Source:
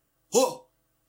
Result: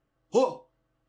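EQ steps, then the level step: low-pass 2.3 kHz 6 dB/octave; distance through air 96 m; 0.0 dB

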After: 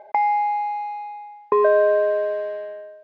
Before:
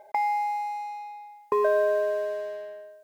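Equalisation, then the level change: distance through air 290 m; bass shelf 110 Hz -8.5 dB; +7.5 dB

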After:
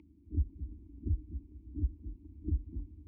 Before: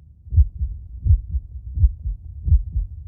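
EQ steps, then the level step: vowel filter u; static phaser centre 320 Hz, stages 4; +16.0 dB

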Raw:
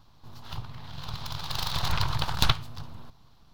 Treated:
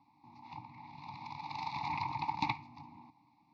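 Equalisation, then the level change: vowel filter u; band-pass 110–7100 Hz; static phaser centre 2.1 kHz, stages 8; +10.5 dB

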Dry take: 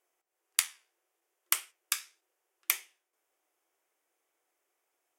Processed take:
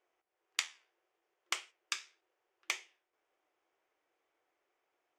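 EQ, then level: dynamic bell 1.4 kHz, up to -5 dB, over -50 dBFS, Q 1.1; dynamic bell 7.1 kHz, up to +6 dB, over -48 dBFS, Q 1.9; distance through air 170 m; +2.0 dB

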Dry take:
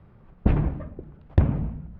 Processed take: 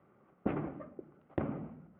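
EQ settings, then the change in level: distance through air 440 m; cabinet simulation 450–2900 Hz, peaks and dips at 470 Hz -6 dB, 670 Hz -6 dB, 950 Hz -10 dB, 1.7 kHz -9 dB, 2.5 kHz -5 dB; +3.0 dB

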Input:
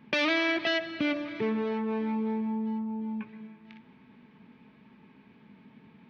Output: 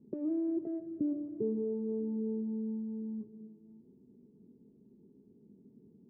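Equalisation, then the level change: four-pole ladder low-pass 430 Hz, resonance 65%; bass shelf 240 Hz +6 dB; 0.0 dB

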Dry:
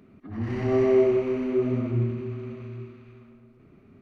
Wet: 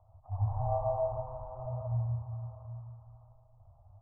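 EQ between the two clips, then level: inverse Chebyshev band-stop 180–410 Hz, stop band 50 dB; steep low-pass 910 Hz 48 dB/octave; hum notches 60/120 Hz; +6.5 dB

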